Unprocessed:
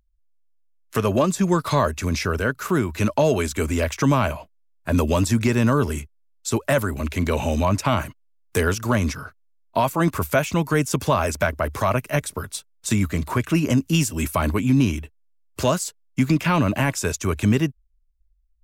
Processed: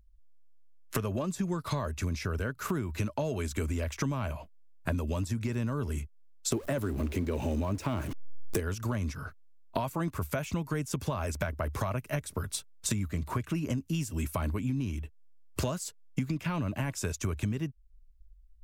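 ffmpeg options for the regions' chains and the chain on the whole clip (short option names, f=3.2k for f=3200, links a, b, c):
-filter_complex "[0:a]asettb=1/sr,asplit=3[a][b][c];[a]atrim=end=6.524[d];[b]atrim=start=6.52:end=8.6,asetpts=PTS-STARTPTS,afade=t=in:d=0.004:c=qsin,afade=t=out:st=2.076:d=0.004:c=qsin,aeval=exprs='val(0)+0.5*0.0376*sgn(val(0))':c=same,equalizer=f=340:w=1.2:g=9.5[e];[c]atrim=start=8.596[f];[d][e]acrossfade=d=0.004:c1=hsin:c2=qsin[g];[g][f]acrossfade=d=0.004:c1=qsin:c2=hsin,lowshelf=f=170:g=9,acompressor=threshold=-29dB:ratio=8"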